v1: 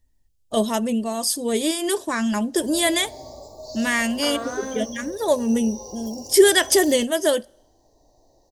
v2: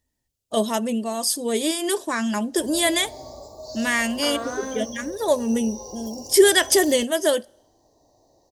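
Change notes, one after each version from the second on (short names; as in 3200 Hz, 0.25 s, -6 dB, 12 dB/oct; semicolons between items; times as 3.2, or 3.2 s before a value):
first voice: add HPF 180 Hz 6 dB/oct; background: remove Butterworth band-stop 1500 Hz, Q 1.6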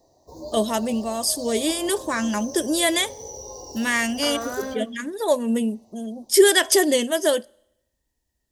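background: entry -2.30 s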